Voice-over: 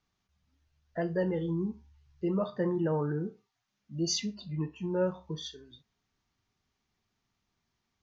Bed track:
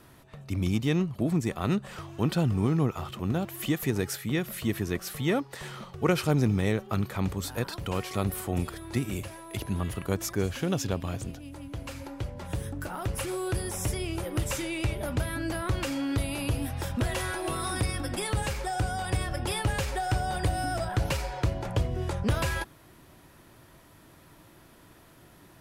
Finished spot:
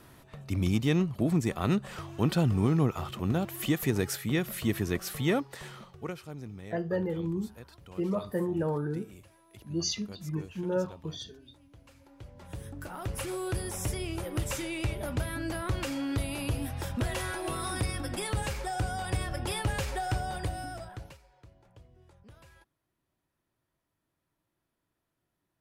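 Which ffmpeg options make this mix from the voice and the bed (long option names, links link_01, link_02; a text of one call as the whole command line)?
ffmpeg -i stem1.wav -i stem2.wav -filter_complex "[0:a]adelay=5750,volume=-0.5dB[link_01];[1:a]volume=15.5dB,afade=type=out:start_time=5.25:duration=0.94:silence=0.125893,afade=type=in:start_time=12.05:duration=1.23:silence=0.16788,afade=type=out:start_time=20.04:duration=1.15:silence=0.0530884[link_02];[link_01][link_02]amix=inputs=2:normalize=0" out.wav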